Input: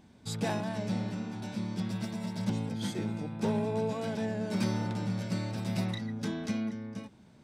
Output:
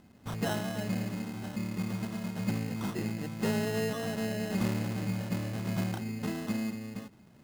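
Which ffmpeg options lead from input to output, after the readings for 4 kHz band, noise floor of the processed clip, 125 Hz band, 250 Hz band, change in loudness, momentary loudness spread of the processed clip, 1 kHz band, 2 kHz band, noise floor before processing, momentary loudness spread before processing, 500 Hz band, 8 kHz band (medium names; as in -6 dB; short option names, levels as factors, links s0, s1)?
0.0 dB, -57 dBFS, 0.0 dB, 0.0 dB, 0.0 dB, 6 LU, -1.5 dB, +3.0 dB, -57 dBFS, 6 LU, -0.5 dB, +2.0 dB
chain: -af "bandreject=f=890:w=21,acrusher=samples=19:mix=1:aa=0.000001"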